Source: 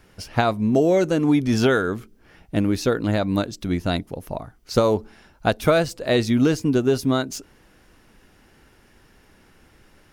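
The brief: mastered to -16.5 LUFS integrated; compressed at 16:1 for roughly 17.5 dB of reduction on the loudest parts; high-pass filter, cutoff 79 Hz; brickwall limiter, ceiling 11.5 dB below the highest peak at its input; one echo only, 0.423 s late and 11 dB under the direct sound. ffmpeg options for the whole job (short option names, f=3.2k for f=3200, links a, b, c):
-af "highpass=79,acompressor=threshold=-31dB:ratio=16,alimiter=level_in=6dB:limit=-24dB:level=0:latency=1,volume=-6dB,aecho=1:1:423:0.282,volume=23.5dB"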